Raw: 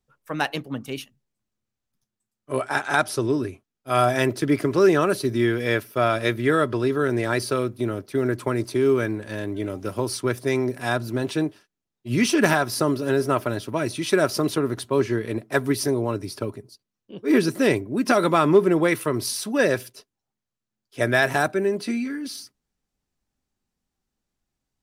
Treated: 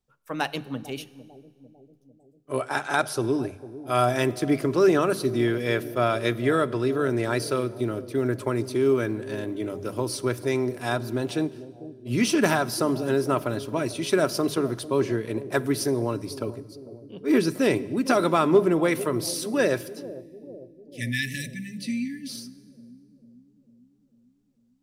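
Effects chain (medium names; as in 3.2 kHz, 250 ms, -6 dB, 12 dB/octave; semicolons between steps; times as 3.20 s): peaking EQ 1.8 kHz -3 dB 0.59 oct; hum notches 50/100/150/200 Hz; Schroeder reverb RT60 1.6 s, combs from 33 ms, DRR 19 dB; spectral selection erased 20.19–22.30 s, 290–1700 Hz; on a send: bucket-brigade echo 448 ms, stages 2048, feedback 59%, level -15 dB; on the sum: trim -2 dB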